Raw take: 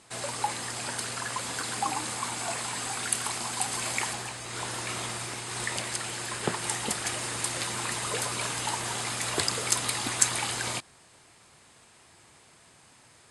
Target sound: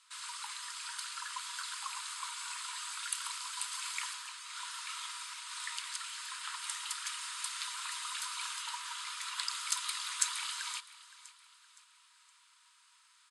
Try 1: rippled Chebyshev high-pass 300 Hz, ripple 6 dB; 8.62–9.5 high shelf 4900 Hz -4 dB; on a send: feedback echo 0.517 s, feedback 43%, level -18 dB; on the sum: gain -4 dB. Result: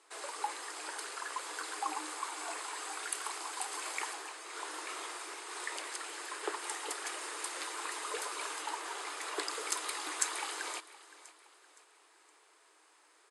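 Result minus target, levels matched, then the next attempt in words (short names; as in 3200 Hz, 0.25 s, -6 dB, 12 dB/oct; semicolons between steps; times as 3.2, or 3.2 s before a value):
1000 Hz band +5.0 dB
rippled Chebyshev high-pass 940 Hz, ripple 6 dB; 8.62–9.5 high shelf 4900 Hz -4 dB; on a send: feedback echo 0.517 s, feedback 43%, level -18 dB; on the sum: gain -4 dB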